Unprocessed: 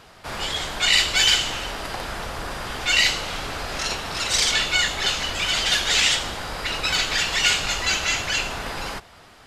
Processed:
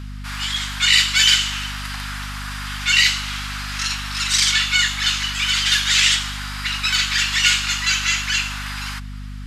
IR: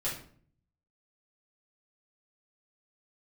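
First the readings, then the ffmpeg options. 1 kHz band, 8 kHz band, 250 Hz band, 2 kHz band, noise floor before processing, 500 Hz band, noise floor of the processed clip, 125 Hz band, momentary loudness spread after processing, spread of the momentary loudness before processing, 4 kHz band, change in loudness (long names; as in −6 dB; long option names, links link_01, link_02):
−1.5 dB, +3.5 dB, +1.0 dB, +3.5 dB, −48 dBFS, below −20 dB, −32 dBFS, +6.0 dB, 15 LU, 13 LU, +3.5 dB, +4.0 dB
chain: -af "highpass=frequency=1200:width=0.5412,highpass=frequency=1200:width=1.3066,aeval=exprs='val(0)+0.02*(sin(2*PI*50*n/s)+sin(2*PI*2*50*n/s)/2+sin(2*PI*3*50*n/s)/3+sin(2*PI*4*50*n/s)/4+sin(2*PI*5*50*n/s)/5)':channel_layout=same,volume=3.5dB"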